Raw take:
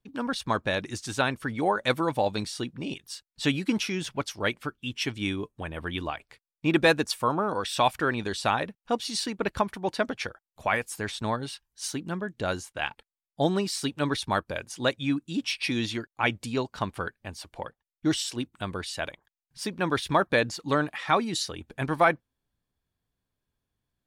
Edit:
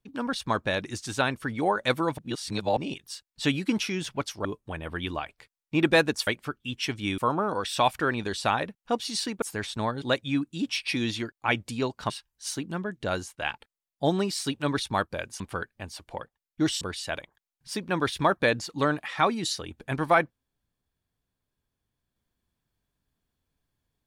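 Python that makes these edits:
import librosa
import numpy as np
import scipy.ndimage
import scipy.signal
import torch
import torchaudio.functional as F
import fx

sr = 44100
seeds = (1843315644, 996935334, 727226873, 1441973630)

y = fx.edit(x, sr, fx.reverse_span(start_s=2.18, length_s=0.59),
    fx.move(start_s=4.45, length_s=0.91, to_s=7.18),
    fx.cut(start_s=9.42, length_s=1.45),
    fx.move(start_s=14.77, length_s=2.08, to_s=11.47),
    fx.cut(start_s=18.26, length_s=0.45), tone=tone)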